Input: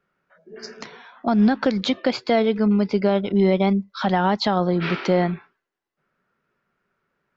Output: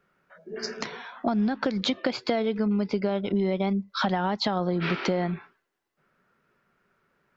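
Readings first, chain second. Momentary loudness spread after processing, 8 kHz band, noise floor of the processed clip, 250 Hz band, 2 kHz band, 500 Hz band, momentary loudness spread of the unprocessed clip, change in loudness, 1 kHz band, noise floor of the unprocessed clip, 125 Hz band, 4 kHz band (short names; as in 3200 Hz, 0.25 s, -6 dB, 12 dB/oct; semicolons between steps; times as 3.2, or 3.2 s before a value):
9 LU, n/a, -78 dBFS, -6.5 dB, -4.0 dB, -6.5 dB, 19 LU, -6.5 dB, -6.0 dB, -82 dBFS, -6.0 dB, -2.5 dB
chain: compressor 6:1, threshold -27 dBFS, peak gain reduction 13 dB; gain +4 dB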